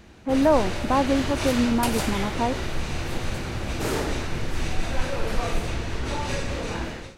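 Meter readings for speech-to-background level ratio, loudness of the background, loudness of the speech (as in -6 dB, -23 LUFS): 5.5 dB, -29.5 LUFS, -24.0 LUFS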